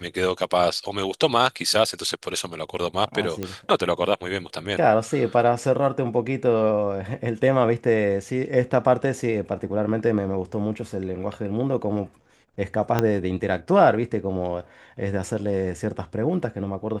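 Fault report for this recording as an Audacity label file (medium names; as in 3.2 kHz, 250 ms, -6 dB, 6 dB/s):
3.430000	3.430000	pop -14 dBFS
10.530000	10.530000	dropout 2.8 ms
12.990000	12.990000	pop -7 dBFS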